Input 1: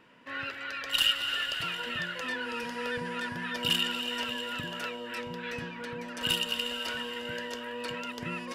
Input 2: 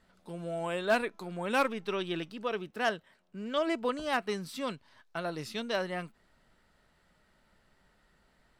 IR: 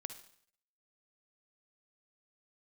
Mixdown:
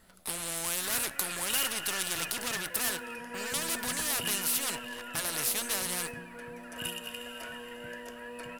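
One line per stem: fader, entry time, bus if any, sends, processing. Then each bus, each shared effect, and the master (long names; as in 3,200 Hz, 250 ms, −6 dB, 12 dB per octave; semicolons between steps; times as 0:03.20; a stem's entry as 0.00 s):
−8.0 dB, 0.55 s, send −8 dB, parametric band 4,000 Hz −11 dB 0.89 octaves; hollow resonant body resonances 680/1,700/2,500 Hz, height 9 dB
−1.5 dB, 0.00 s, send −10 dB, high-shelf EQ 9,000 Hz +12 dB; leveller curve on the samples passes 3; every bin compressed towards the loudest bin 4 to 1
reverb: on, RT60 0.60 s, pre-delay 48 ms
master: parametric band 11,000 Hz +9 dB 0.69 octaves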